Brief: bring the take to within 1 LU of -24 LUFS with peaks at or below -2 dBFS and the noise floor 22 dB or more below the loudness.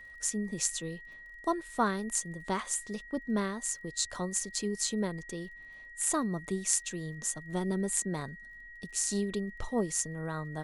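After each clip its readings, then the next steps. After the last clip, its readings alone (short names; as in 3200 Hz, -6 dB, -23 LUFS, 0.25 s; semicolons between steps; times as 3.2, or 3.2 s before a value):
ticks 23/s; steady tone 1900 Hz; tone level -47 dBFS; loudness -33.0 LUFS; peak -8.5 dBFS; loudness target -24.0 LUFS
-> de-click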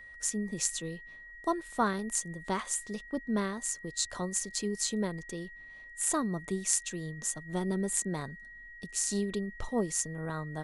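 ticks 0/s; steady tone 1900 Hz; tone level -47 dBFS
-> notch 1900 Hz, Q 30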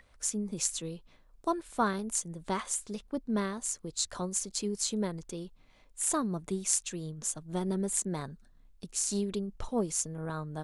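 steady tone none; loudness -33.0 LUFS; peak -8.0 dBFS; loudness target -24.0 LUFS
-> gain +9 dB; limiter -2 dBFS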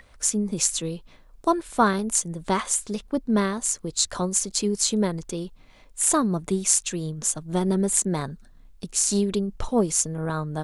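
loudness -24.0 LUFS; peak -2.0 dBFS; noise floor -52 dBFS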